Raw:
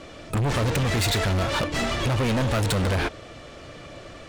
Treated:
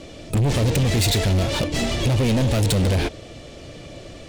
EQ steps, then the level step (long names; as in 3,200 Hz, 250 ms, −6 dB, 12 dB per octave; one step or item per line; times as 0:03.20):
parametric band 1,300 Hz −11.5 dB 1.4 octaves
+5.0 dB